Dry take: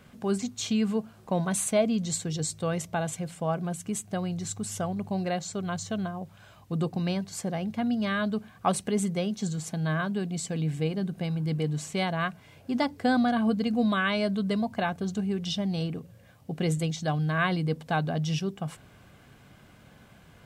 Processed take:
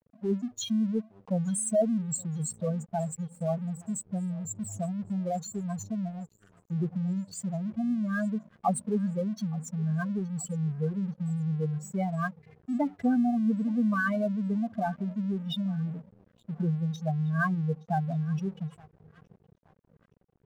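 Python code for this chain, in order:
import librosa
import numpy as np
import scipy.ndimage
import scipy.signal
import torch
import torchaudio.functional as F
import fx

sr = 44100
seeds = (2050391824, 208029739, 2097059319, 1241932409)

y = fx.spec_expand(x, sr, power=3.2)
y = fx.echo_feedback(y, sr, ms=870, feedback_pct=46, wet_db=-23.5)
y = np.sign(y) * np.maximum(np.abs(y) - 10.0 ** (-50.5 / 20.0), 0.0)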